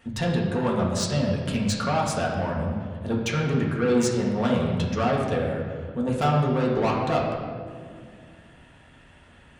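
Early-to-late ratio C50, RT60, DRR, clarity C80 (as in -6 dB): 2.5 dB, 2.1 s, -3.5 dB, 4.0 dB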